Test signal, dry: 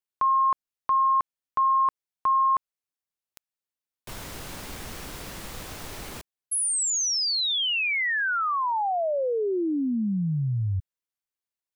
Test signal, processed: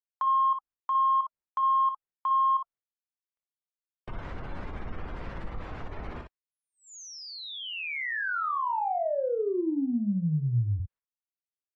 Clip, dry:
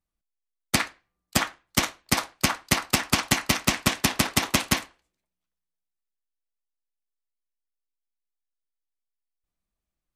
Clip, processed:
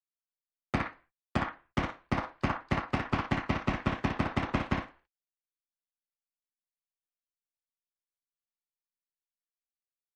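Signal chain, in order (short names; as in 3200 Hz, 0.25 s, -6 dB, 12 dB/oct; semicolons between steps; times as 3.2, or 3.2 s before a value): spectral gate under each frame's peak -20 dB strong; LPF 1600 Hz 12 dB/oct; gate -53 dBFS, range -44 dB; low shelf 75 Hz +9.5 dB; in parallel at -3 dB: compressor, threshold -35 dBFS; on the sum: soft clip -10.5 dBFS; on a send: early reflections 25 ms -11 dB, 58 ms -6.5 dB; on the sum: mismatched tape noise reduction encoder only; gain -5.5 dB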